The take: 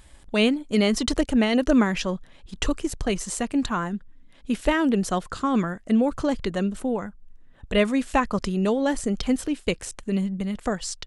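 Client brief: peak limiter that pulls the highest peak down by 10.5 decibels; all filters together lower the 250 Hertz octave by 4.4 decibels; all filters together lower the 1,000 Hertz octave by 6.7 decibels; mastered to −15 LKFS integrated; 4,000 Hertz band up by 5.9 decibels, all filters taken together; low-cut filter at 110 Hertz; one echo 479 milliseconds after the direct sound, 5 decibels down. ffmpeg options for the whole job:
ffmpeg -i in.wav -af "highpass=110,equalizer=frequency=250:width_type=o:gain=-4.5,equalizer=frequency=1000:width_type=o:gain=-9,equalizer=frequency=4000:width_type=o:gain=9,alimiter=limit=-17dB:level=0:latency=1,aecho=1:1:479:0.562,volume=13dB" out.wav

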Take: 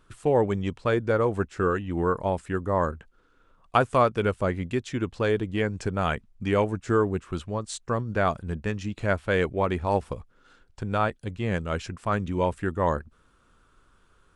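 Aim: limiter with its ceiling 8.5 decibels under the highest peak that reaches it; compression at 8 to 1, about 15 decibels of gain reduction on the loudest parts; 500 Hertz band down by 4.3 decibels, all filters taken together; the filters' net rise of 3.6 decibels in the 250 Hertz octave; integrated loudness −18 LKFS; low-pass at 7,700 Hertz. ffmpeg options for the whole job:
ffmpeg -i in.wav -af "lowpass=7700,equalizer=frequency=250:width_type=o:gain=7,equalizer=frequency=500:width_type=o:gain=-7.5,acompressor=threshold=-33dB:ratio=8,volume=22dB,alimiter=limit=-6.5dB:level=0:latency=1" out.wav

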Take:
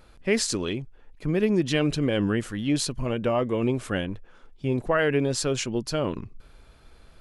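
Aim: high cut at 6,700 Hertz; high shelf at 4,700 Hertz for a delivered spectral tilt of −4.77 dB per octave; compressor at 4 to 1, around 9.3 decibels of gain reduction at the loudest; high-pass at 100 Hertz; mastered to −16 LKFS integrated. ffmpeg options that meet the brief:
ffmpeg -i in.wav -af "highpass=100,lowpass=6700,highshelf=frequency=4700:gain=3,acompressor=threshold=-30dB:ratio=4,volume=17.5dB" out.wav

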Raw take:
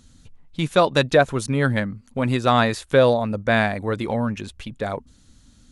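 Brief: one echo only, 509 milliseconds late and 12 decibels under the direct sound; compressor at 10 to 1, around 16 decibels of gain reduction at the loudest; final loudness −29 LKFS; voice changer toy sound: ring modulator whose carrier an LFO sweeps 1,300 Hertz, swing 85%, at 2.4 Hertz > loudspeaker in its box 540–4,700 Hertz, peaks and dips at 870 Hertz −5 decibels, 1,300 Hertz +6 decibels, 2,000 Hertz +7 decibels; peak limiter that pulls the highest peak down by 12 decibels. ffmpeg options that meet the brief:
ffmpeg -i in.wav -af "acompressor=threshold=-27dB:ratio=10,alimiter=level_in=2.5dB:limit=-24dB:level=0:latency=1,volume=-2.5dB,aecho=1:1:509:0.251,aeval=exprs='val(0)*sin(2*PI*1300*n/s+1300*0.85/2.4*sin(2*PI*2.4*n/s))':channel_layout=same,highpass=540,equalizer=frequency=870:width_type=q:width=4:gain=-5,equalizer=frequency=1300:width_type=q:width=4:gain=6,equalizer=frequency=2000:width_type=q:width=4:gain=7,lowpass=frequency=4700:width=0.5412,lowpass=frequency=4700:width=1.3066,volume=6.5dB" out.wav

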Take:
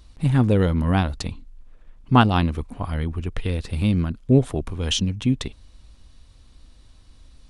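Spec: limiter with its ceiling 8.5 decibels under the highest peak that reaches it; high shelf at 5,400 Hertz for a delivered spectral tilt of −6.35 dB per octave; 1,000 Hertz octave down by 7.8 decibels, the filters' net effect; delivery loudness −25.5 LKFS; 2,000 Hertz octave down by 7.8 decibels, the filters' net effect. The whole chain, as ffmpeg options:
ffmpeg -i in.wav -af "equalizer=frequency=1000:width_type=o:gain=-8.5,equalizer=frequency=2000:width_type=o:gain=-9,highshelf=frequency=5400:gain=4.5,alimiter=limit=-13.5dB:level=0:latency=1" out.wav

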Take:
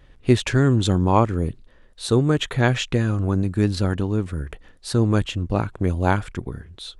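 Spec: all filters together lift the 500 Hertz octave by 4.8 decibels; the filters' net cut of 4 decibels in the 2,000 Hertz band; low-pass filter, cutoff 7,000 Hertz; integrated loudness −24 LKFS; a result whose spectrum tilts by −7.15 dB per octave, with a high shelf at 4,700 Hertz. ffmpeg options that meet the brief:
ffmpeg -i in.wav -af "lowpass=7000,equalizer=frequency=500:width_type=o:gain=6.5,equalizer=frequency=2000:width_type=o:gain=-5.5,highshelf=frequency=4700:gain=-3,volume=-4dB" out.wav

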